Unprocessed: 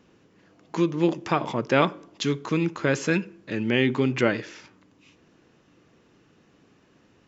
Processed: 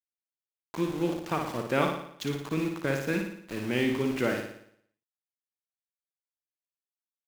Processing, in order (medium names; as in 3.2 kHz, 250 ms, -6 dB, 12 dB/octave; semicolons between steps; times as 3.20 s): treble shelf 3.8 kHz -3.5 dB; small samples zeroed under -31 dBFS; on a send: flutter echo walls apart 9.8 m, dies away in 0.66 s; on the sum: trim -6.5 dB